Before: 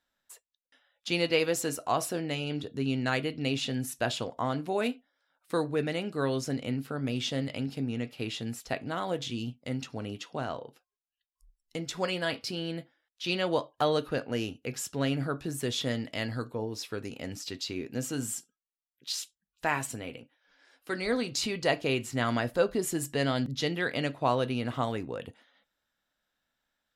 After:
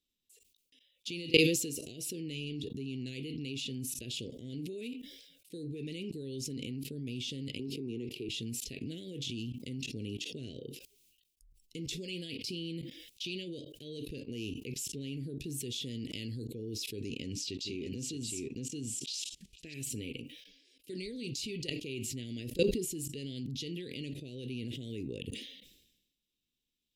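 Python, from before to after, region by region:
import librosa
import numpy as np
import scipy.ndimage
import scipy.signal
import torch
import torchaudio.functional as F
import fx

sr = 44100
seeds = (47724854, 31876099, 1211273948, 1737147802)

y = fx.chain(x, sr, fx.peak_eq(hz=380.0, db=15.0, octaves=0.58),
    fx.band_squash(depth_pct=100), at=(7.59, 8.29))
y = fx.chain(y, sr, fx.lowpass(hz=7400.0, slope=12),
    fx.echo_single(ms=622, db=-5.5), at=(17.02, 19.74))
y = fx.level_steps(y, sr, step_db=23)
y = scipy.signal.sosfilt(scipy.signal.ellip(3, 1.0, 60, [410.0, 2600.0], 'bandstop', fs=sr, output='sos'), y)
y = fx.sustainer(y, sr, db_per_s=56.0)
y = y * librosa.db_to_amplitude(8.0)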